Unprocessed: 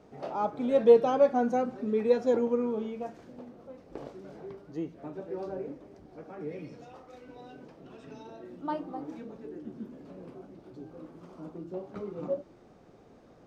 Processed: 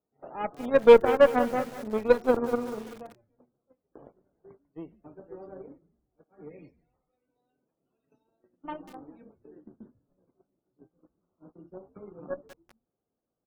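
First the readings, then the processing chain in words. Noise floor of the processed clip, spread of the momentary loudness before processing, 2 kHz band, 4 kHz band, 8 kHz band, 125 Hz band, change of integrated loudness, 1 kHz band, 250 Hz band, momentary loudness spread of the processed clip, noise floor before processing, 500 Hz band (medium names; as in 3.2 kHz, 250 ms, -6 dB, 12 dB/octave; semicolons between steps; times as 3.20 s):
-85 dBFS, 23 LU, +10.5 dB, +7.5 dB, no reading, -2.5 dB, +6.5 dB, +2.0 dB, -1.0 dB, 24 LU, -56 dBFS, +2.5 dB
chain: gate -42 dBFS, range -22 dB; on a send: frequency-shifting echo 143 ms, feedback 42%, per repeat -110 Hz, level -21 dB; on the sum: Chebyshev shaper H 2 -12 dB, 7 -19 dB, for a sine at -8.5 dBFS; loudest bins only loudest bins 64; in parallel at -5 dB: hard clipper -17.5 dBFS, distortion -9 dB; on the sum: bit-crushed delay 190 ms, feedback 55%, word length 6-bit, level -13.5 dB; trim +1 dB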